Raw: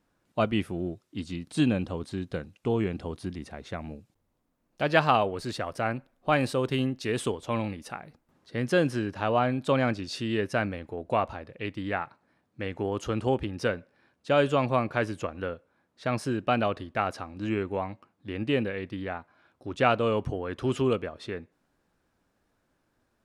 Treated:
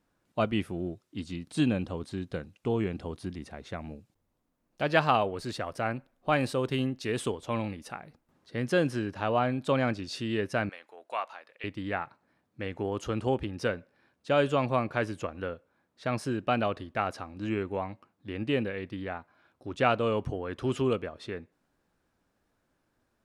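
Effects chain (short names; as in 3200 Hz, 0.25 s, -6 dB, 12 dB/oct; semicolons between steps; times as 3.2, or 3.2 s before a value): 10.69–11.64 HPF 950 Hz 12 dB/oct; gain -2 dB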